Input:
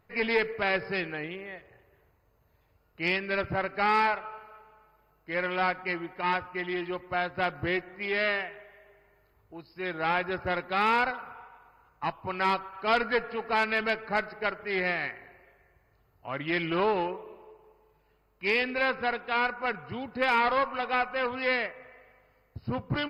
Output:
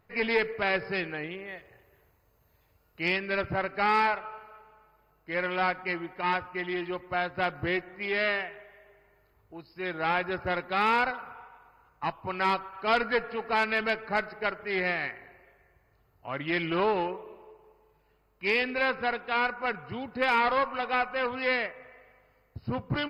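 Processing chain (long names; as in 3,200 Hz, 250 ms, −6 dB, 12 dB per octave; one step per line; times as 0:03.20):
0:01.48–0:03.03: high-shelf EQ 4,000 Hz +8 dB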